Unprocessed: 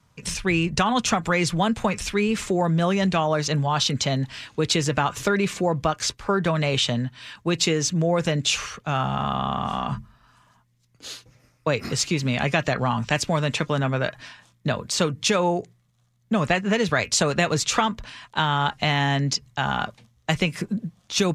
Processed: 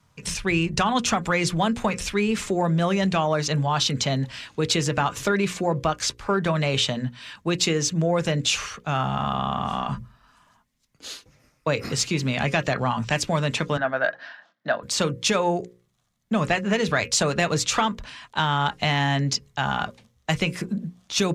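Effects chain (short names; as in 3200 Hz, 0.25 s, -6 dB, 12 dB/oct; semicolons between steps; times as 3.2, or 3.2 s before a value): 13.77–14.83 speaker cabinet 350–4200 Hz, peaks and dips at 410 Hz -9 dB, 680 Hz +8 dB, 1000 Hz -4 dB, 1600 Hz +9 dB, 2400 Hz -9 dB, 3500 Hz -5 dB; soft clip -6 dBFS, distortion -28 dB; notches 60/120/180/240/300/360/420/480/540 Hz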